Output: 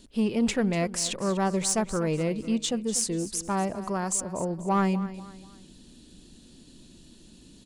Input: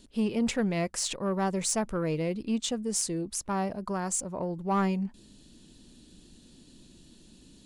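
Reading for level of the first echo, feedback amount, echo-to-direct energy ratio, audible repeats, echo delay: -15.0 dB, 37%, -14.5 dB, 3, 0.244 s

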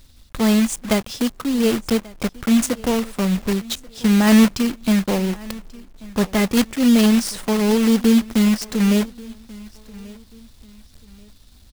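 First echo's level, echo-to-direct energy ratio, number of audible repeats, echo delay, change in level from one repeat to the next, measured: -22.0 dB, -21.5 dB, 2, 1.136 s, -10.0 dB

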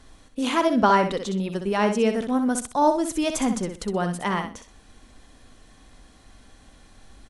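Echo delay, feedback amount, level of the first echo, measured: 63 ms, 23%, -7.5 dB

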